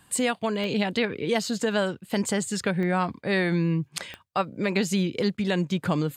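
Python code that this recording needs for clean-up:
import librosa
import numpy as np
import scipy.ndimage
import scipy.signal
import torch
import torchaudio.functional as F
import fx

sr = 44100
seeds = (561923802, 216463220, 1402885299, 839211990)

y = fx.fix_declick_ar(x, sr, threshold=10.0)
y = fx.fix_interpolate(y, sr, at_s=(5.37,), length_ms=9.5)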